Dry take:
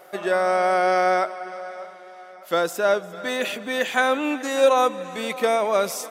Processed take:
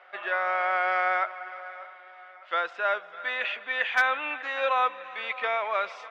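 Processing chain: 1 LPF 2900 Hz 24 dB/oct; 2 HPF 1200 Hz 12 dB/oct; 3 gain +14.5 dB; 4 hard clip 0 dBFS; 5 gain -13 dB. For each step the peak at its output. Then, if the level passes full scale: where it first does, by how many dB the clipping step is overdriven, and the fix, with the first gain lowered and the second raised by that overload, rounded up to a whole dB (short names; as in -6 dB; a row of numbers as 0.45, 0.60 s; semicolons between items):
-6.5, -10.5, +4.0, 0.0, -13.0 dBFS; step 3, 4.0 dB; step 3 +10.5 dB, step 5 -9 dB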